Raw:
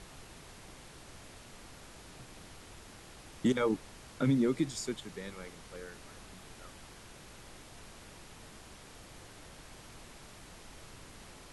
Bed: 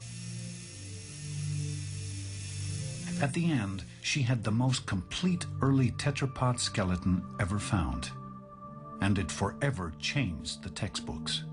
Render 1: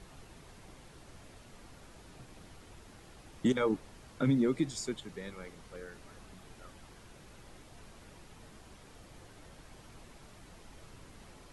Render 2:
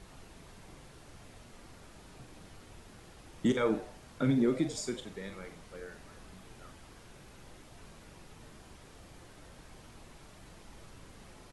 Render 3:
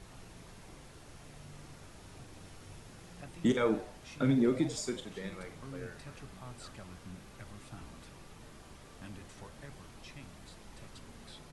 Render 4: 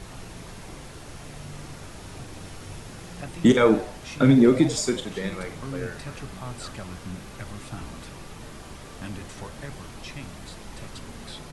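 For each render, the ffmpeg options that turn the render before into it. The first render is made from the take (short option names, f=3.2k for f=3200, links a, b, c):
-af "afftdn=nr=6:nf=-53"
-filter_complex "[0:a]asplit=2[a][b];[b]adelay=42,volume=-9dB[c];[a][c]amix=inputs=2:normalize=0,asplit=4[d][e][f][g];[e]adelay=86,afreqshift=140,volume=-16dB[h];[f]adelay=172,afreqshift=280,volume=-24.9dB[i];[g]adelay=258,afreqshift=420,volume=-33.7dB[j];[d][h][i][j]amix=inputs=4:normalize=0"
-filter_complex "[1:a]volume=-20.5dB[a];[0:a][a]amix=inputs=2:normalize=0"
-af "volume=11.5dB"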